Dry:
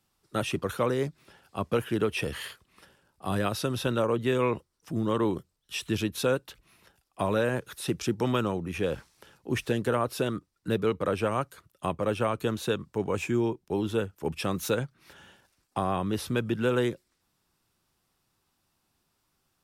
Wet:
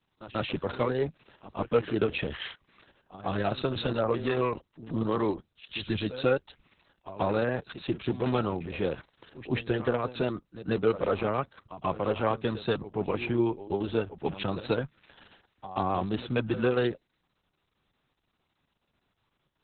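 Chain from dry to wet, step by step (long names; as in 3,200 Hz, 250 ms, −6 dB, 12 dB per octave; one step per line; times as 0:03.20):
dynamic equaliser 760 Hz, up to +5 dB, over −48 dBFS, Q 4.3
backwards echo 137 ms −14 dB
harmonic generator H 6 −40 dB, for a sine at −12.5 dBFS
Opus 6 kbit/s 48,000 Hz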